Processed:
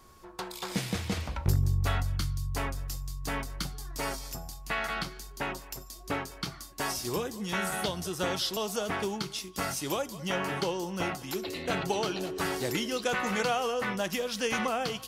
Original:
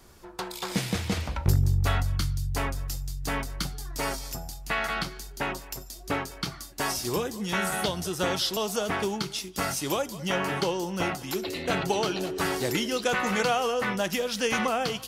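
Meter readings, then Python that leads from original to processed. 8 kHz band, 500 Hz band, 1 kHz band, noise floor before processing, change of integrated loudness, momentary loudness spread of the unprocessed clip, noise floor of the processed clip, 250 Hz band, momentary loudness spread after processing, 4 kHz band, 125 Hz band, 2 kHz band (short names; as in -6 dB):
-3.5 dB, -3.5 dB, -3.5 dB, -44 dBFS, -3.5 dB, 9 LU, -48 dBFS, -3.5 dB, 9 LU, -3.5 dB, -3.5 dB, -3.5 dB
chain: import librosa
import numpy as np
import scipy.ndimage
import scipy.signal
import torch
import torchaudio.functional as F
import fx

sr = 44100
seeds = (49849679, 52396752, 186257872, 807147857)

y = x + 10.0 ** (-55.0 / 20.0) * np.sin(2.0 * np.pi * 1100.0 * np.arange(len(x)) / sr)
y = y * 10.0 ** (-3.5 / 20.0)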